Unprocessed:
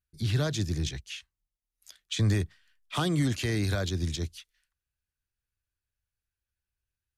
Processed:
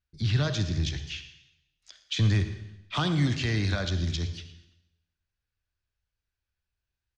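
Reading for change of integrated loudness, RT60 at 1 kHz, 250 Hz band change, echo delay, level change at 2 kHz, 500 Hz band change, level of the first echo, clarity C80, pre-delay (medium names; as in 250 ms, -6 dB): +1.5 dB, 0.90 s, +0.5 dB, 115 ms, +2.5 dB, -1.5 dB, -18.0 dB, 11.0 dB, 37 ms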